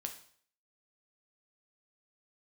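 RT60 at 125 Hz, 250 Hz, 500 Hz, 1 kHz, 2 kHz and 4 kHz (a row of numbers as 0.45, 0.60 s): 0.55, 0.50, 0.55, 0.55, 0.55, 0.55 s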